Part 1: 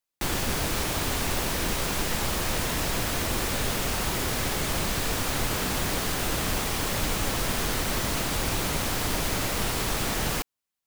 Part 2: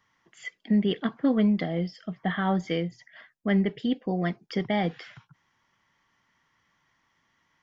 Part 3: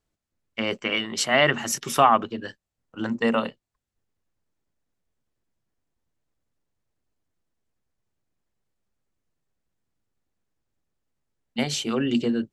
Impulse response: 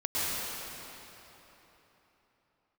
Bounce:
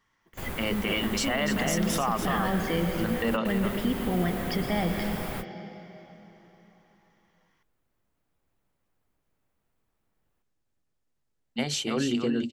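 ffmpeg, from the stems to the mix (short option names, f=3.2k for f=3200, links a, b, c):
-filter_complex "[0:a]equalizer=f=5.7k:t=o:w=1.6:g=-14,volume=-6.5dB[a];[1:a]alimiter=limit=-23dB:level=0:latency=1,dynaudnorm=f=170:g=17:m=7dB,volume=-4.5dB,asplit=3[b][c][d];[c]volume=-12dB[e];[2:a]acompressor=threshold=-23dB:ratio=1.5,volume=-1.5dB,asplit=2[f][g];[g]volume=-7.5dB[h];[d]apad=whole_len=479053[i];[a][i]sidechaingate=range=-45dB:threshold=-59dB:ratio=16:detection=peak[j];[3:a]atrim=start_sample=2205[k];[e][k]afir=irnorm=-1:irlink=0[l];[h]aecho=0:1:289:1[m];[j][b][f][l][m]amix=inputs=5:normalize=0,alimiter=limit=-17dB:level=0:latency=1:release=43"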